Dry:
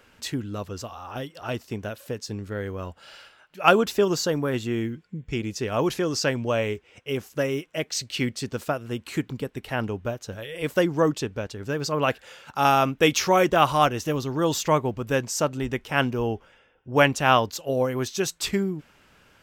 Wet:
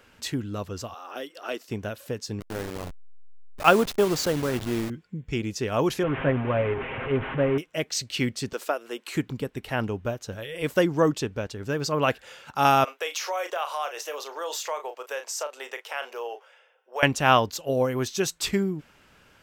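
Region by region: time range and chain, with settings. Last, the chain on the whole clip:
0.94–1.69 HPF 300 Hz 24 dB/oct + bell 890 Hz -5.5 dB 0.47 oct
2.4–4.9 level-crossing sampler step -28.5 dBFS + core saturation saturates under 520 Hz
6.03–7.58 delta modulation 16 kbps, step -25 dBFS + air absorption 400 m + comb 7.5 ms, depth 58%
8.53–9.15 HPF 340 Hz 24 dB/oct + mismatched tape noise reduction encoder only
12.84–17.03 steep high-pass 480 Hz + doubler 34 ms -10.5 dB + compressor 2.5:1, threshold -30 dBFS
whole clip: dry

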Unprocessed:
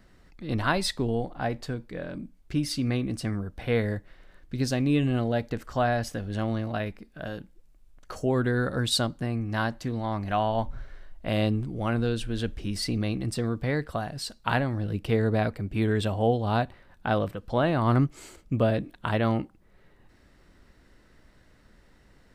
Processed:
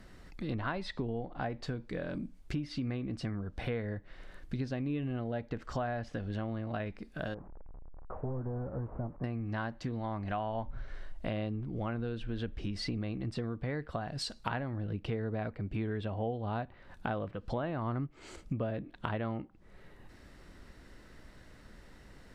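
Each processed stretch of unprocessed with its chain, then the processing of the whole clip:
7.34–9.24 delta modulation 16 kbps, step -42 dBFS + LPF 1000 Hz 24 dB/oct + bell 230 Hz -8.5 dB 2.7 oct
whole clip: treble ducked by the level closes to 2700 Hz, closed at -25 dBFS; compressor 4:1, threshold -38 dBFS; gain +3.5 dB

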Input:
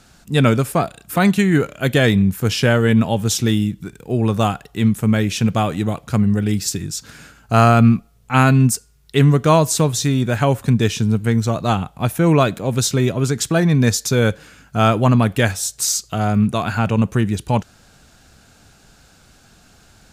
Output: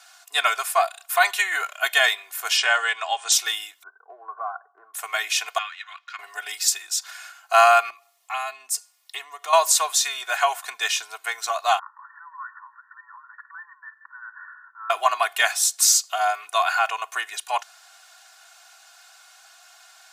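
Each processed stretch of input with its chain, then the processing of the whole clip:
2.57–3.32 brick-wall FIR low-pass 9300 Hz + low shelf 150 Hz -10 dB
3.83–4.94 rippled Chebyshev low-pass 1600 Hz, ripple 6 dB + compressor 3:1, threshold -24 dBFS + mismatched tape noise reduction decoder only
5.58–6.19 inverse Chebyshev high-pass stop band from 320 Hz, stop band 70 dB + air absorption 220 m
7.9–9.53 low shelf 150 Hz +10.5 dB + compressor 3:1, threshold -21 dBFS + notch 1500 Hz, Q 5.8
11.79–14.9 compressor 20:1, threshold -25 dBFS + transient shaper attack -11 dB, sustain +6 dB + brick-wall FIR band-pass 850–1900 Hz
whole clip: steep high-pass 730 Hz 36 dB/oct; comb 2.8 ms, depth 90%

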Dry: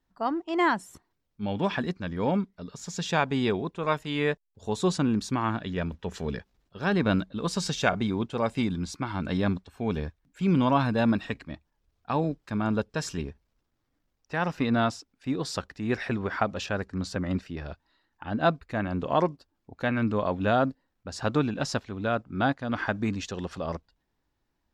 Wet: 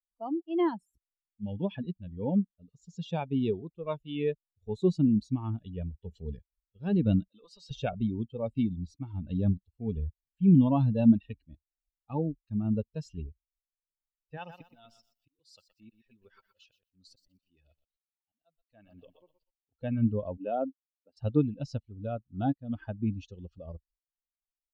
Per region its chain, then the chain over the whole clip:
7.28–7.71 HPF 350 Hz 6 dB/oct + compressor 4:1, threshold -37 dBFS + overdrive pedal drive 13 dB, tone 5600 Hz, clips at -23.5 dBFS
14.37–19.74 tilt +3 dB/oct + auto swell 0.742 s + lo-fi delay 0.122 s, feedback 55%, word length 8-bit, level -4.5 dB
20.37–21.17 Chebyshev band-pass 300–3200 Hz + air absorption 130 m
whole clip: per-bin expansion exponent 2; EQ curve 230 Hz 0 dB, 860 Hz -11 dB, 1300 Hz -21 dB, 1900 Hz -23 dB, 2800 Hz -11 dB, 10000 Hz -29 dB; gain +6.5 dB

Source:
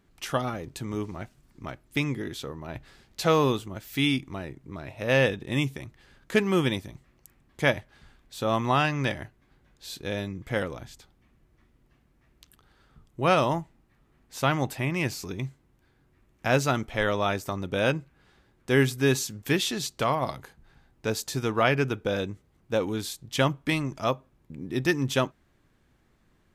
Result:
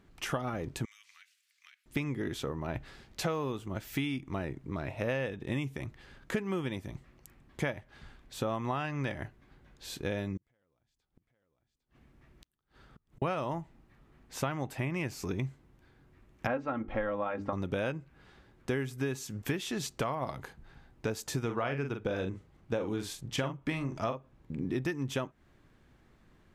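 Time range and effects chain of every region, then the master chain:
0.85–1.86 inverse Chebyshev high-pass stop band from 610 Hz, stop band 60 dB + compressor 10:1, threshold -54 dBFS
10.37–13.22 echo 0.804 s -8.5 dB + compressor 10:1, threshold -47 dBFS + flipped gate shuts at -47 dBFS, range -29 dB
16.47–17.53 LPF 1700 Hz + notches 50/100/150/200/250/300/350/400/450 Hz + comb 3.7 ms, depth 68%
21.4–24.78 high shelf 11000 Hz -7.5 dB + doubler 43 ms -7.5 dB
whole clip: high shelf 6200 Hz -7.5 dB; compressor 12:1, threshold -32 dBFS; dynamic EQ 4100 Hz, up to -6 dB, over -58 dBFS, Q 1.8; gain +3 dB

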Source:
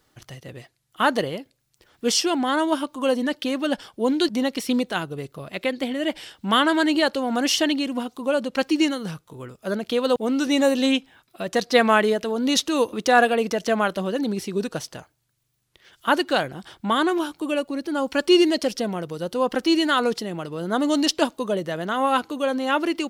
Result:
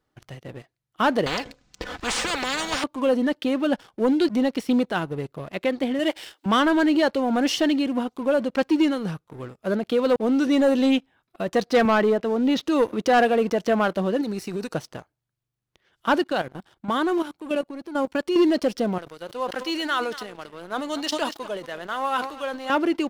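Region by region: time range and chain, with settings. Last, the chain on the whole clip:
1.26–2.84 steep low-pass 7400 Hz + comb 4 ms, depth 71% + spectral compressor 10:1
5.99–6.46 brick-wall FIR high-pass 280 Hz + high shelf 2700 Hz +9.5 dB
11.85–12.63 HPF 84 Hz 24 dB/oct + air absorption 170 m
14.21–14.74 high shelf 2100 Hz +11 dB + compressor 4:1, threshold -28 dBFS + Butterworth band-stop 3300 Hz, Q 5.3
16.22–18.36 level quantiser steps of 12 dB + high shelf 4000 Hz +4.5 dB
18.98–22.7 HPF 1400 Hz 6 dB/oct + echo 0.235 s -17 dB + sustainer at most 97 dB/s
whole clip: high shelf 2800 Hz -11 dB; sample leveller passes 2; gain -5 dB

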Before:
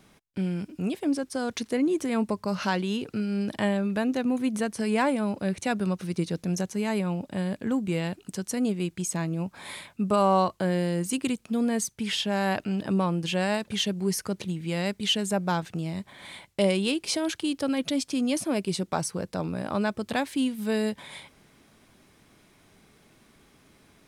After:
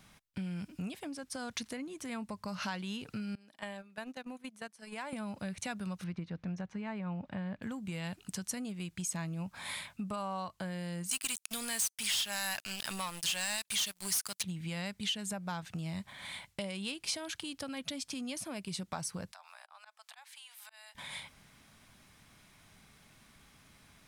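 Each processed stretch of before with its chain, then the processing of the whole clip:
3.35–5.13 HPF 290 Hz + gate -29 dBFS, range -20 dB + compressor 4:1, threshold -33 dBFS
6.04–7.62 LPF 2000 Hz + mismatched tape noise reduction encoder only
11.11–14.43 pre-emphasis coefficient 0.97 + sample leveller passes 5
19.32–20.95 steep high-pass 710 Hz 48 dB/oct + auto swell 0.607 s + compressor 10:1, threshold -47 dBFS
whole clip: compressor 5:1, threshold -32 dBFS; bell 380 Hz -12 dB 1.3 oct

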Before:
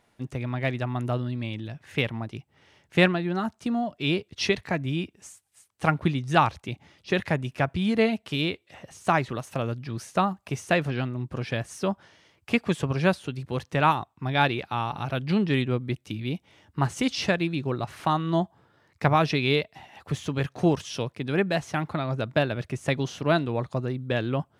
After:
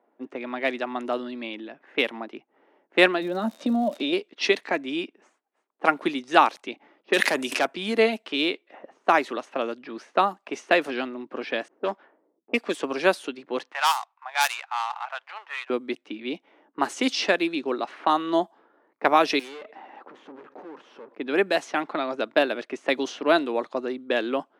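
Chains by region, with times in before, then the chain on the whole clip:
3.21–4.12 crackle 230/s -38 dBFS + compressor 10:1, threshold -30 dBFS + small resonant body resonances 210/550/3700 Hz, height 15 dB, ringing for 30 ms
7.13–7.67 high shelf 3000 Hz +7 dB + overloaded stage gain 18 dB + sustainer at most 28 dB/s
11.68–12.83 half-wave gain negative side -7 dB + low-pass opened by the level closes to 330 Hz, open at -24.5 dBFS
13.72–15.7 switching dead time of 0.1 ms + steep high-pass 790 Hz + core saturation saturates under 2600 Hz
19.39–21.15 tube stage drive 41 dB, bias 0.65 + notch 680 Hz, Q 8.3 + fast leveller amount 70%
whole clip: low-pass opened by the level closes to 840 Hz, open at -21 dBFS; steep high-pass 260 Hz 36 dB/oct; high shelf 9000 Hz +4 dB; gain +3.5 dB

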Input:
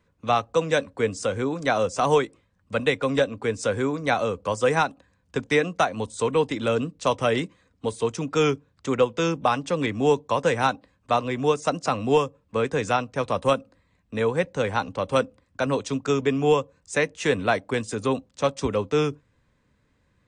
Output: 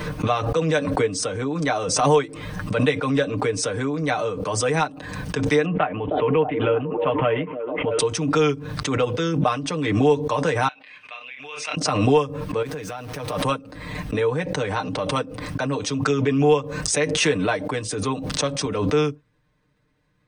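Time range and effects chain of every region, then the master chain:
5.65–7.99 steep low-pass 3100 Hz 72 dB/oct + delay with a stepping band-pass 0.313 s, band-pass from 370 Hz, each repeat 0.7 oct, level -7 dB
10.68–11.77 band-pass 2500 Hz, Q 4.7 + doubler 29 ms -7.5 dB
12.62–13.42 zero-crossing step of -36.5 dBFS + compressor 10:1, threshold -28 dBFS
whole clip: notch 7200 Hz, Q 5; comb 6.6 ms, depth 79%; backwards sustainer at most 39 dB/s; gain -3 dB

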